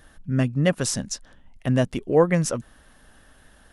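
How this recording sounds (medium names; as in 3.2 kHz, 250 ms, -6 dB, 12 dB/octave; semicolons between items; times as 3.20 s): noise floor -55 dBFS; spectral tilt -5.5 dB/octave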